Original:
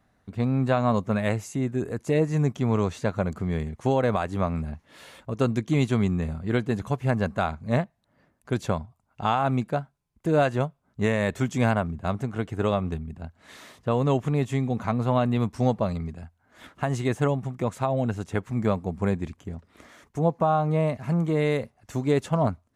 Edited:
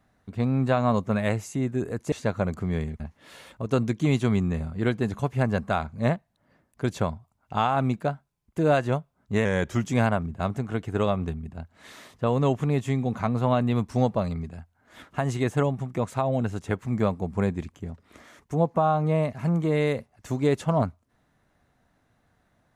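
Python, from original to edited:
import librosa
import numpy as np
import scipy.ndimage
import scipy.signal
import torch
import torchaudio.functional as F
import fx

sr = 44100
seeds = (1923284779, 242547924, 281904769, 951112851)

y = fx.edit(x, sr, fx.cut(start_s=2.12, length_s=0.79),
    fx.cut(start_s=3.79, length_s=0.89),
    fx.speed_span(start_s=11.13, length_s=0.36, speed=0.91), tone=tone)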